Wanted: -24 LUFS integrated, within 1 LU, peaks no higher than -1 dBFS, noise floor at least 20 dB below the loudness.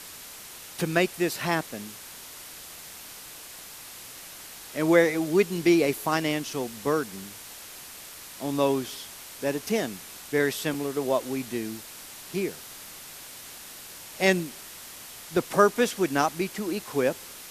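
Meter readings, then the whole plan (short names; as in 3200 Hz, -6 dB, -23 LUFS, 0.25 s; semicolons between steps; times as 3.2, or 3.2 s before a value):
dropouts 1; longest dropout 3.1 ms; noise floor -44 dBFS; noise floor target -47 dBFS; loudness -26.5 LUFS; peak -4.5 dBFS; loudness target -24.0 LUFS
-> interpolate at 10.74, 3.1 ms; denoiser 6 dB, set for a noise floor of -44 dBFS; gain +2.5 dB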